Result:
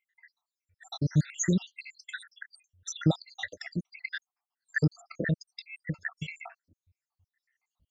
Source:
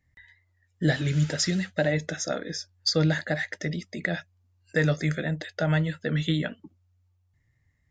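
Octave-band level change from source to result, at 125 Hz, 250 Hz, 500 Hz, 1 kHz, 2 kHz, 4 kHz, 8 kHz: −5.0, −4.5, −11.5, −9.5, −6.0, −11.0, −3.0 decibels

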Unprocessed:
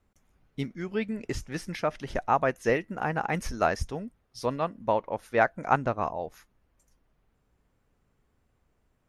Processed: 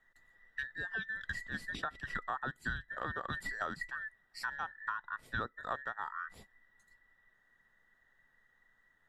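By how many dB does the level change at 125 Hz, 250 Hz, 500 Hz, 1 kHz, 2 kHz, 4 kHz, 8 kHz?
−13.5, −17.0, −21.0, −12.0, −3.0, −5.0, −12.5 decibels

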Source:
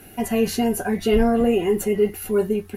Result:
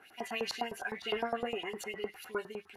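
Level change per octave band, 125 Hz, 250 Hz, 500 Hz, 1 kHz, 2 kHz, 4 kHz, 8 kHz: −24.5, −24.0, −18.0, −9.5, −5.5, −5.5, −16.5 decibels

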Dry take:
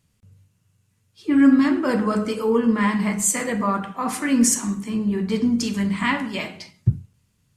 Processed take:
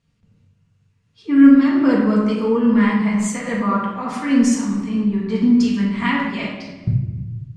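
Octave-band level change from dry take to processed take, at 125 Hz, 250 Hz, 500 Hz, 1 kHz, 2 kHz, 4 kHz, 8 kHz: +3.5, +5.0, +1.5, +1.5, +1.5, −0.5, −8.5 decibels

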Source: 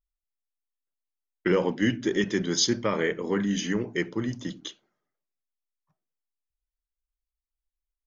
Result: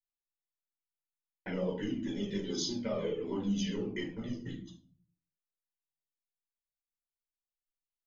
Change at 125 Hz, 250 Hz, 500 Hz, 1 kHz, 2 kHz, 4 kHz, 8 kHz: −7.5 dB, −8.0 dB, −9.0 dB, −13.0 dB, −15.5 dB, −10.0 dB, can't be measured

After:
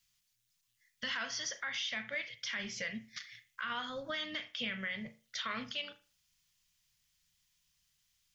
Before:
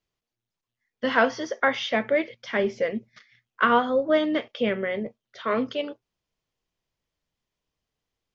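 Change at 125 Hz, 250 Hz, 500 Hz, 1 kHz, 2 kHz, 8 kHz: −11.5 dB, −18.5 dB, −23.5 dB, −18.0 dB, −10.5 dB, can't be measured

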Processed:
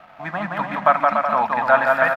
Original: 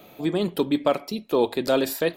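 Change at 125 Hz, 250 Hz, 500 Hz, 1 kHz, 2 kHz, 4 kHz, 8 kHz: −1.5 dB, −7.0 dB, +1.5 dB, +14.5 dB, +15.0 dB, can't be measured, below −15 dB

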